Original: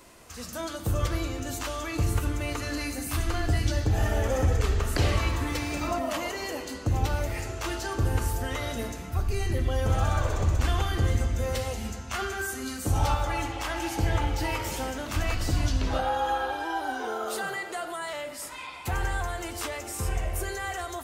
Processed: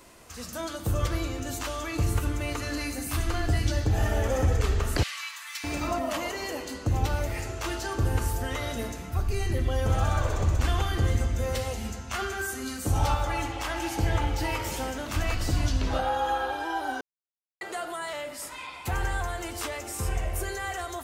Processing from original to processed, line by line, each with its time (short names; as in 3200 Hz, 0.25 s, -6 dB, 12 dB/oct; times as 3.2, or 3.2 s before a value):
5.03–5.64 Bessel high-pass 1900 Hz, order 6
17.01–17.61 mute